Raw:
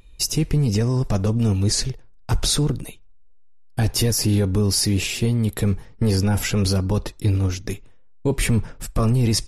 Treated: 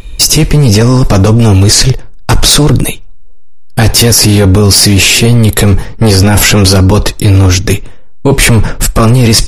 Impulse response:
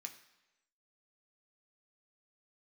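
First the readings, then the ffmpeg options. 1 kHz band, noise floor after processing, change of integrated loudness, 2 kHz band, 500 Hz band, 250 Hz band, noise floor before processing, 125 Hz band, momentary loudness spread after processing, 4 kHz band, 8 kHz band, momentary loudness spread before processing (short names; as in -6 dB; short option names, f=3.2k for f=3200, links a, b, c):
+18.5 dB, -22 dBFS, +15.0 dB, +19.5 dB, +15.5 dB, +14.0 dB, -45 dBFS, +14.0 dB, 8 LU, +17.5 dB, +17.0 dB, 10 LU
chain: -af "apsyclip=25.5dB,aeval=exprs='sgn(val(0))*max(abs(val(0))-0.00668,0)':c=same,volume=-1.5dB"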